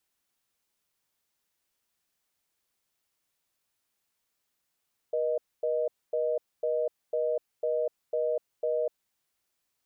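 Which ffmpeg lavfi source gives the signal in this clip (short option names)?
-f lavfi -i "aevalsrc='0.0398*(sin(2*PI*480*t)+sin(2*PI*620*t))*clip(min(mod(t,0.5),0.25-mod(t,0.5))/0.005,0,1)':d=3.75:s=44100"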